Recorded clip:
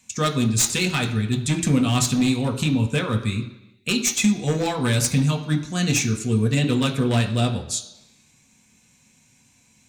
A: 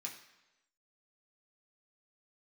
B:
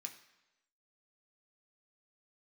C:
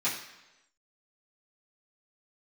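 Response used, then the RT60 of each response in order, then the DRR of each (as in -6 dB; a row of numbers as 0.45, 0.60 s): B; 1.0, 1.0, 1.0 s; -2.0, 3.0, -11.5 dB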